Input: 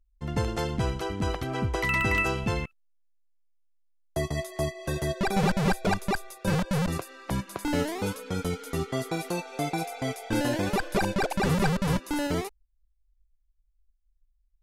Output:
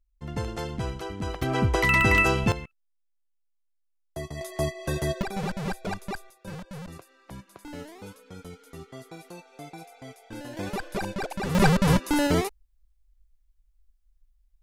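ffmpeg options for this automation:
ffmpeg -i in.wav -af "asetnsamples=nb_out_samples=441:pad=0,asendcmd='1.42 volume volume 5dB;2.52 volume volume -6.5dB;4.41 volume volume 1.5dB;5.22 volume volume -6.5dB;6.3 volume volume -13dB;10.57 volume volume -5dB;11.55 volume volume 5.5dB',volume=-3.5dB" out.wav

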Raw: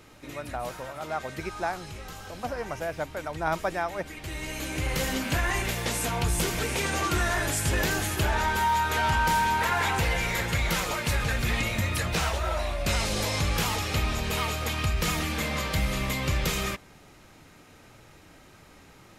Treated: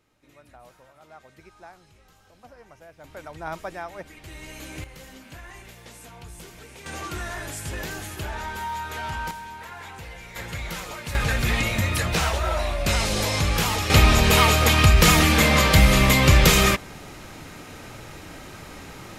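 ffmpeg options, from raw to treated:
ffmpeg -i in.wav -af "asetnsamples=nb_out_samples=441:pad=0,asendcmd='3.04 volume volume -5.5dB;4.84 volume volume -16dB;6.86 volume volume -6.5dB;9.31 volume volume -14dB;10.36 volume volume -6dB;11.15 volume volume 4dB;13.9 volume volume 12dB',volume=-16dB" out.wav

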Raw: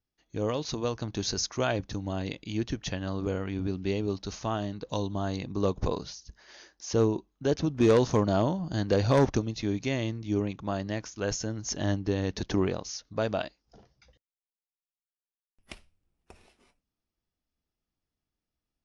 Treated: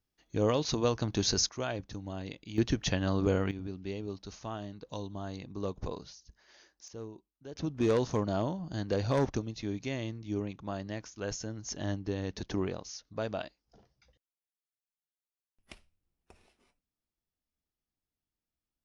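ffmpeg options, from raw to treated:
ffmpeg -i in.wav -af "asetnsamples=nb_out_samples=441:pad=0,asendcmd='1.49 volume volume -7dB;2.58 volume volume 3dB;3.51 volume volume -8.5dB;6.88 volume volume -19dB;7.56 volume volume -6dB',volume=2dB" out.wav

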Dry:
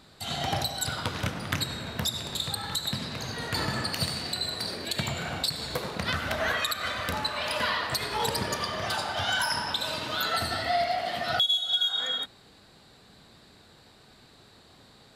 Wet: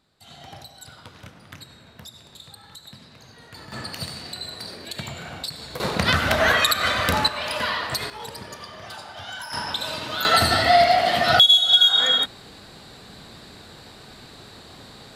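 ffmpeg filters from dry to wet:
ffmpeg -i in.wav -af "asetnsamples=nb_out_samples=441:pad=0,asendcmd='3.72 volume volume -3dB;5.8 volume volume 9.5dB;7.28 volume volume 2.5dB;8.1 volume volume -8dB;9.53 volume volume 2dB;10.25 volume volume 11dB',volume=-13dB" out.wav

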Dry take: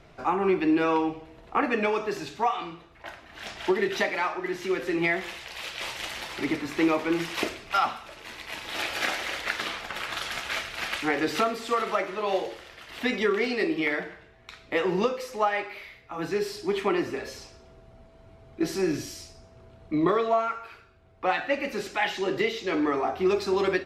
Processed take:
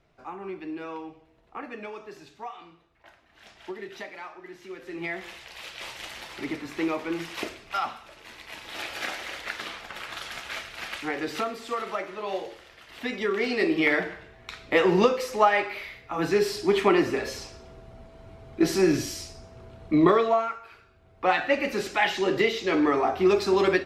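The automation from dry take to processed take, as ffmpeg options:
ffmpeg -i in.wav -af "volume=13dB,afade=type=in:start_time=4.8:duration=0.53:silence=0.375837,afade=type=in:start_time=13.18:duration=0.78:silence=0.334965,afade=type=out:start_time=20.02:duration=0.59:silence=0.316228,afade=type=in:start_time=20.61:duration=0.72:silence=0.398107" out.wav

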